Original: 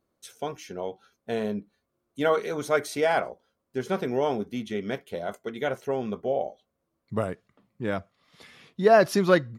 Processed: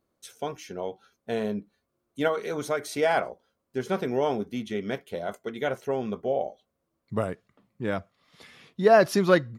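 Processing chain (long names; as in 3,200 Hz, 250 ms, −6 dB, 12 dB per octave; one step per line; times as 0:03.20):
0:02.27–0:02.98: downward compressor, threshold −23 dBFS, peak gain reduction 6.5 dB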